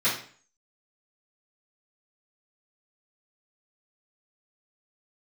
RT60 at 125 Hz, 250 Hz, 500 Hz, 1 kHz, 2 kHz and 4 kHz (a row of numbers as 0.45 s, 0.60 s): 0.50 s, 0.50 s, 0.45 s, 0.45 s, 0.45 s, 0.40 s